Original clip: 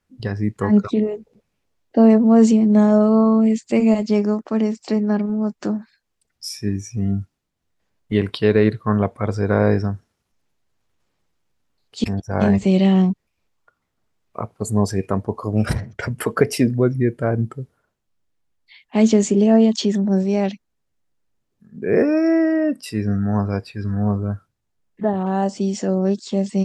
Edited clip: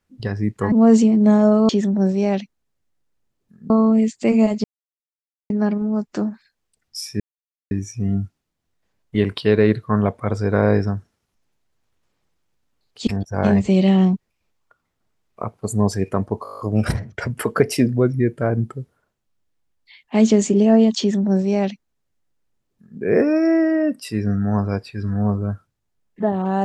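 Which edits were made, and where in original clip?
0:00.72–0:02.21: remove
0:04.12–0:04.98: silence
0:06.68: splice in silence 0.51 s
0:15.40: stutter 0.02 s, 9 plays
0:19.80–0:21.81: duplicate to 0:03.18

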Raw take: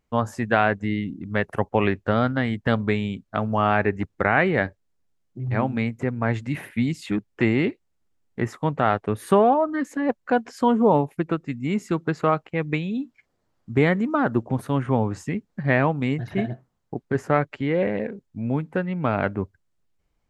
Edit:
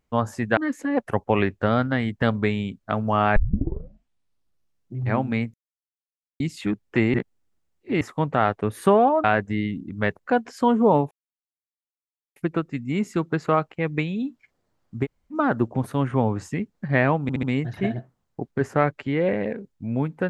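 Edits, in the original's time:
0:00.57–0:01.52: swap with 0:09.69–0:10.19
0:03.81: tape start 1.60 s
0:05.99–0:06.85: silence
0:07.59–0:08.46: reverse
0:11.11: splice in silence 1.25 s
0:13.79–0:14.08: fill with room tone, crossfade 0.06 s
0:15.97: stutter 0.07 s, 4 plays

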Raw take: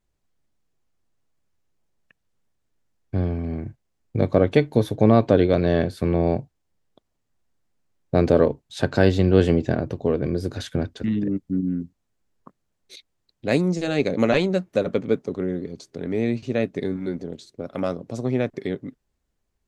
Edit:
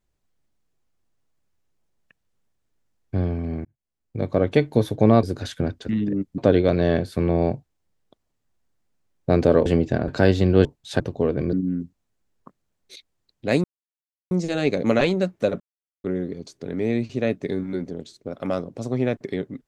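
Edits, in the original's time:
0:03.65–0:04.66: fade in
0:08.51–0:08.86: swap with 0:09.43–0:09.85
0:10.38–0:11.53: move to 0:05.23
0:13.64: splice in silence 0.67 s
0:14.93–0:15.37: silence

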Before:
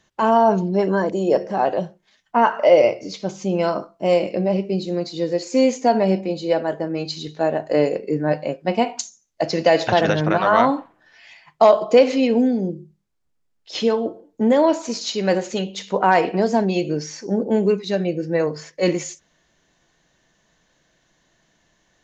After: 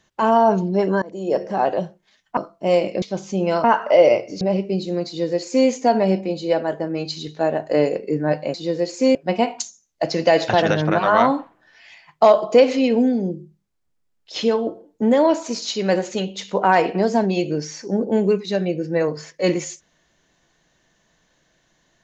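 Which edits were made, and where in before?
0:01.02–0:01.47: fade in, from −22 dB
0:02.37–0:03.14: swap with 0:03.76–0:04.41
0:05.07–0:05.68: duplicate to 0:08.54

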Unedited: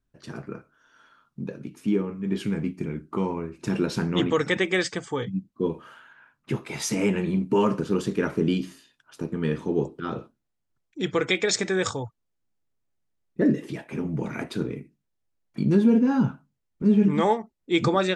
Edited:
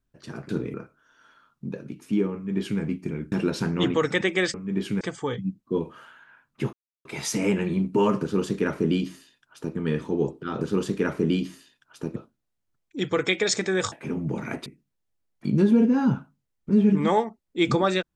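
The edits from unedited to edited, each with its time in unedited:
0:02.09–0:02.56: duplicate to 0:04.90
0:03.07–0:03.68: remove
0:06.62: splice in silence 0.32 s
0:07.79–0:09.34: duplicate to 0:10.18
0:11.94–0:13.80: remove
0:14.54–0:14.79: move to 0:00.49

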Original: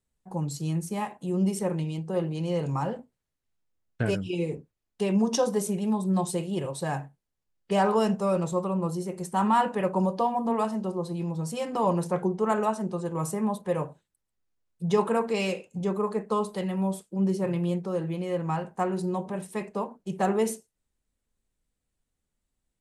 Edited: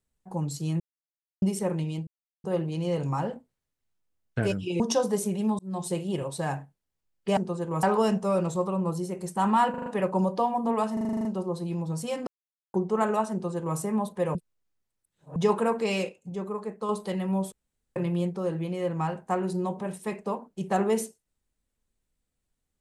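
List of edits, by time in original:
0:00.80–0:01.42: silence
0:02.07: splice in silence 0.37 s
0:04.43–0:05.23: remove
0:06.02–0:06.37: fade in
0:09.67: stutter 0.04 s, 5 plays
0:10.74: stutter 0.04 s, 9 plays
0:11.76–0:12.23: silence
0:12.81–0:13.27: duplicate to 0:07.80
0:13.84–0:14.85: reverse
0:15.58–0:16.38: clip gain −5.5 dB
0:17.01–0:17.45: fill with room tone

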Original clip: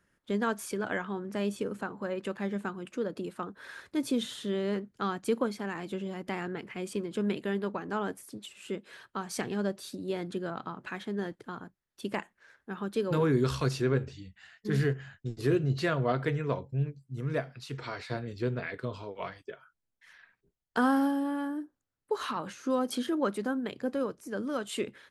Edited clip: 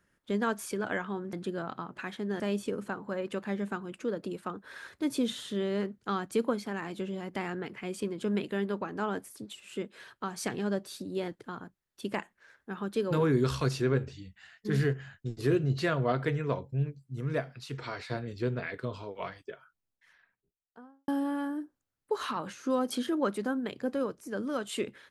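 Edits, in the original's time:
0:10.21–0:11.28: move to 0:01.33
0:19.44–0:21.08: fade out and dull

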